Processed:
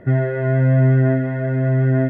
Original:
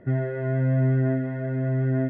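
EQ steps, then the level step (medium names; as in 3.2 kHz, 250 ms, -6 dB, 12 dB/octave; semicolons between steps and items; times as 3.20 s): peaking EQ 260 Hz -3.5 dB 1.7 oct; +9.0 dB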